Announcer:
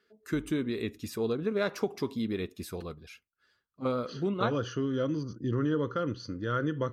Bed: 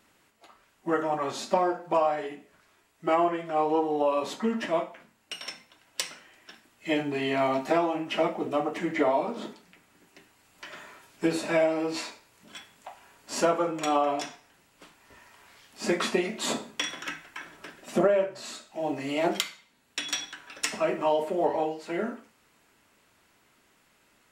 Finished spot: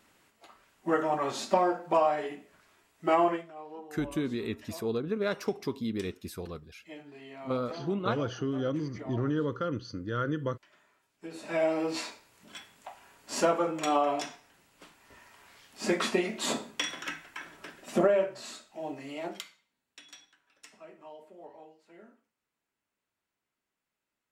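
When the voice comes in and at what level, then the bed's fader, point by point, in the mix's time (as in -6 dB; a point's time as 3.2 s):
3.65 s, -1.0 dB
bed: 3.34 s -0.5 dB
3.55 s -19.5 dB
11.22 s -19.5 dB
11.68 s -1.5 dB
18.3 s -1.5 dB
20.4 s -23.5 dB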